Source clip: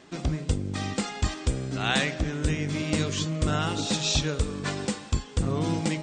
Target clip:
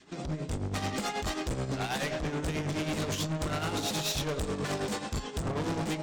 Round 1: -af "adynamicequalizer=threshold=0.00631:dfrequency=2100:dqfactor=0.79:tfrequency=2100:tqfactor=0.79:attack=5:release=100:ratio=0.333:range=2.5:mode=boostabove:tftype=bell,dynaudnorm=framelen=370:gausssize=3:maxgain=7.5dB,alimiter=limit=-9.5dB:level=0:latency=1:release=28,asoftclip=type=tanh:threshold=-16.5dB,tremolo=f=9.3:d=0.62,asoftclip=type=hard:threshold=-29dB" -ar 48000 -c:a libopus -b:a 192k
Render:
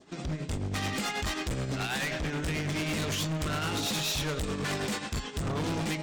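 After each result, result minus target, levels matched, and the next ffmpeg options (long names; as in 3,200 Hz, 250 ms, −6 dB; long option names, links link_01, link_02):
soft clipping: distortion −7 dB; 500 Hz band −3.0 dB
-af "adynamicequalizer=threshold=0.00631:dfrequency=2100:dqfactor=0.79:tfrequency=2100:tqfactor=0.79:attack=5:release=100:ratio=0.333:range=2.5:mode=boostabove:tftype=bell,dynaudnorm=framelen=370:gausssize=3:maxgain=7.5dB,alimiter=limit=-9.5dB:level=0:latency=1:release=28,asoftclip=type=tanh:threshold=-25.5dB,tremolo=f=9.3:d=0.62,asoftclip=type=hard:threshold=-29dB" -ar 48000 -c:a libopus -b:a 192k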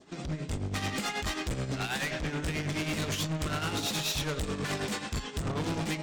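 500 Hz band −3.0 dB
-af "adynamicequalizer=threshold=0.00631:dfrequency=610:dqfactor=0.79:tfrequency=610:tqfactor=0.79:attack=5:release=100:ratio=0.333:range=2.5:mode=boostabove:tftype=bell,dynaudnorm=framelen=370:gausssize=3:maxgain=7.5dB,alimiter=limit=-9.5dB:level=0:latency=1:release=28,asoftclip=type=tanh:threshold=-25.5dB,tremolo=f=9.3:d=0.62,asoftclip=type=hard:threshold=-29dB" -ar 48000 -c:a libopus -b:a 192k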